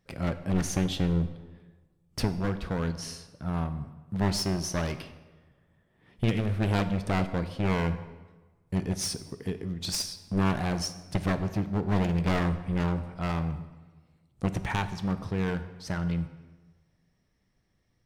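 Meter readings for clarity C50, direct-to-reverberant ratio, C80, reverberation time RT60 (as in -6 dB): 12.5 dB, 10.5 dB, 13.5 dB, 1.3 s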